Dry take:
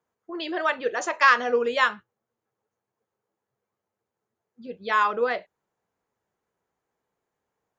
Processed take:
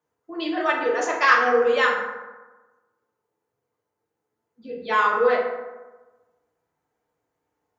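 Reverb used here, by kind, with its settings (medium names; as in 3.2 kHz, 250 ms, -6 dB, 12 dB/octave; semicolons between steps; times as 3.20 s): FDN reverb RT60 1.2 s, low-frequency decay 1×, high-frequency decay 0.45×, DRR -3.5 dB; trim -2.5 dB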